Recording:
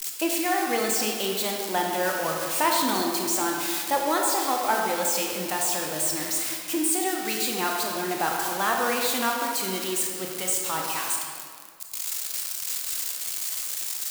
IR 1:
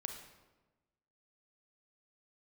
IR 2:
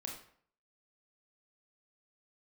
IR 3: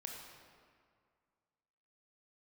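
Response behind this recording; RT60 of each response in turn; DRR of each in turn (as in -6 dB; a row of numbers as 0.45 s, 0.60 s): 3; 1.2 s, 0.55 s, 2.1 s; 4.5 dB, 0.0 dB, 0.0 dB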